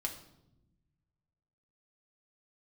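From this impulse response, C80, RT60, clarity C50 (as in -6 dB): 12.5 dB, not exponential, 9.5 dB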